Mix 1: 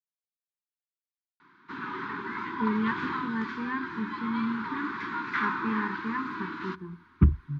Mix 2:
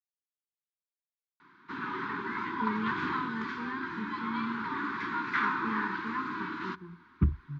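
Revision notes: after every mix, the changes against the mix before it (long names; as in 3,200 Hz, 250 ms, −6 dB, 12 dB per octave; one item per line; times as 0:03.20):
speech −6.0 dB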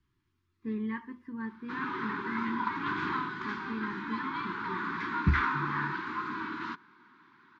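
speech: entry −1.95 s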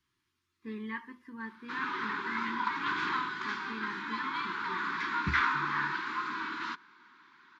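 master: add spectral tilt +3 dB per octave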